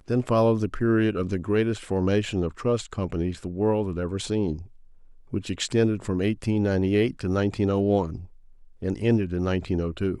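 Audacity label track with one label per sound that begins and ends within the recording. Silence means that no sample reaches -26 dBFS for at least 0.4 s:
5.330000	8.150000	sound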